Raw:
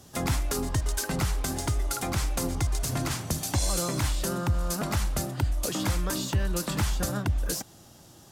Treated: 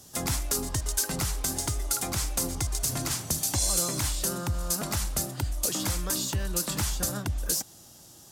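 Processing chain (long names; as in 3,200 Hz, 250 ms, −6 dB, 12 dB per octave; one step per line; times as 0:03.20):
bass and treble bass −1 dB, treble +9 dB
level −3 dB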